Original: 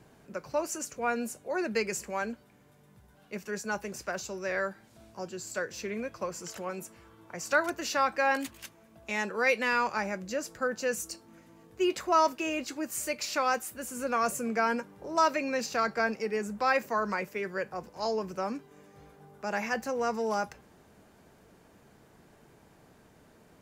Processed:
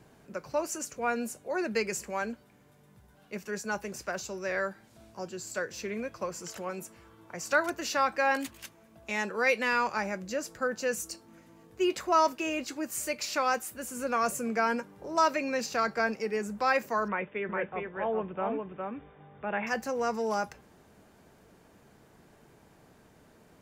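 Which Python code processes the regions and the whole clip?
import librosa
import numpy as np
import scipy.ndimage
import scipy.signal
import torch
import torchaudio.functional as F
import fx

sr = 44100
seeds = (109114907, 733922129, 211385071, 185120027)

y = fx.chain(x, sr, fx.brickwall_lowpass(high_hz=3700.0),
    fx.echo_single(ms=409, db=-4.0), at=(17.08, 19.67))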